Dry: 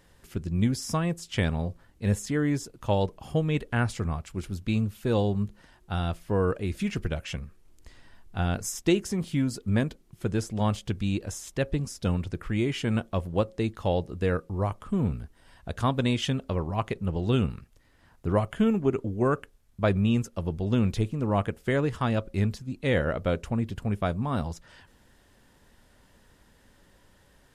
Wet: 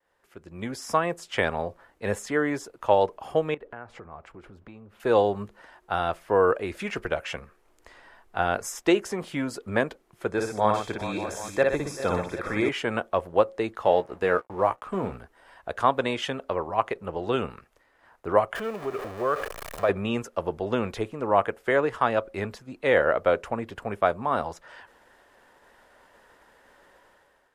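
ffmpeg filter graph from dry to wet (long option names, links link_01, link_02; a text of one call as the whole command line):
ffmpeg -i in.wav -filter_complex "[0:a]asettb=1/sr,asplit=3[link_01][link_02][link_03];[link_01]atrim=end=3.544[link_04];[link_02]atrim=start=3.54:end=5,asetpts=PTS-STARTPTS,afade=type=in:duration=0.004:curve=qsin,afade=type=out:start_time=1.456:duration=0.004:curve=qsin,lowpass=frequency=1100:poles=1,acompressor=threshold=-37dB:ratio=8:attack=3.2:release=140:knee=1:detection=peak[link_05];[link_03]atrim=start=4.996[link_06];[link_04][link_05]acrossfade=duration=0.004:curve1=hsin:curve2=qsin[link_07];[link_07][link_06]acrossfade=duration=0.004:curve1=qsin:curve2=hsin,asettb=1/sr,asplit=3[link_08][link_09][link_10];[link_08]atrim=end=10.304[link_11];[link_09]atrim=start=10.3:end=12.69,asetpts=PTS-STARTPTS,afade=type=in:duration=0.004:curve=qsin,afade=type=out:start_time=2.386:duration=0.004:curve=qsin,asuperstop=centerf=2900:order=12:qfactor=7.1,aecho=1:1:57|120|388|418|582|776:0.668|0.355|0.133|0.2|0.2|0.15,atrim=end_sample=105399[link_12];[link_10]atrim=start=12.686[link_13];[link_11][link_12]acrossfade=duration=0.004:curve1=hsin:curve2=qsin[link_14];[link_14][link_13]acrossfade=duration=0.004:curve1=qsin:curve2=hsin,asettb=1/sr,asplit=3[link_15][link_16][link_17];[link_15]atrim=end=13.844[link_18];[link_16]atrim=start=13.84:end=15.18,asetpts=PTS-STARTPTS,afade=type=in:duration=0.004:curve=qsin,afade=type=out:start_time=1.336:duration=0.004:curve=qsin,aeval=exprs='sgn(val(0))*max(abs(val(0))-0.00282,0)':channel_layout=same,asplit=2[link_19][link_20];[link_20]adelay=16,volume=-8.5dB[link_21];[link_19][link_21]amix=inputs=2:normalize=0,atrim=end_sample=59094[link_22];[link_17]atrim=start=15.176[link_23];[link_18][link_22]acrossfade=duration=0.004:curve1=hsin:curve2=qsin[link_24];[link_24][link_23]acrossfade=duration=0.004:curve1=qsin:curve2=hsin,asettb=1/sr,asplit=3[link_25][link_26][link_27];[link_25]atrim=end=18.554[link_28];[link_26]atrim=start=18.55:end=19.89,asetpts=PTS-STARTPTS,afade=type=in:duration=0.004:curve=qsin,afade=type=out:start_time=1.336:duration=0.004:curve=qsin,aeval=exprs='val(0)+0.5*0.0299*sgn(val(0))':channel_layout=same,aecho=1:1:1.7:0.34,atrim=end_sample=59094,acompressor=threshold=-33dB:ratio=2:attack=3.2:release=140:knee=1:detection=peak[link_29];[link_27]atrim=start=19.886[link_30];[link_28][link_29]acrossfade=duration=0.004:curve1=hsin:curve2=qsin[link_31];[link_31][link_30]acrossfade=duration=0.004:curve1=qsin:curve2=hsin,agate=range=-33dB:threshold=-57dB:ratio=3:detection=peak,acrossover=split=410 2100:gain=0.0891 1 0.251[link_32][link_33][link_34];[link_32][link_33][link_34]amix=inputs=3:normalize=0,dynaudnorm=framelen=180:gausssize=7:maxgain=14.5dB,volume=-4dB" out.wav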